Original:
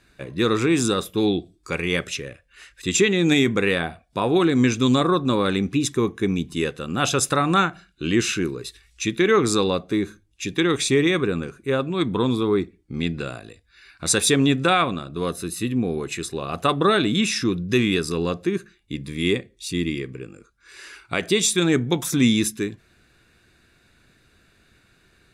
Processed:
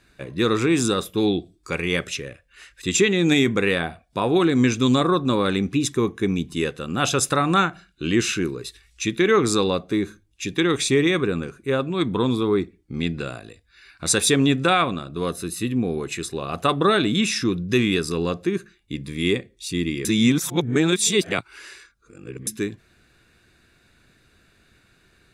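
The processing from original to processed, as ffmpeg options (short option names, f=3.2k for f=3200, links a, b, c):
-filter_complex "[0:a]asplit=3[a][b][c];[a]atrim=end=20.052[d];[b]atrim=start=20.048:end=22.472,asetpts=PTS-STARTPTS,areverse[e];[c]atrim=start=22.468[f];[d][e]acrossfade=d=0.004:c1=hsin:c2=hsin[g];[g][f]acrossfade=d=0.004:c1=hsin:c2=hsin"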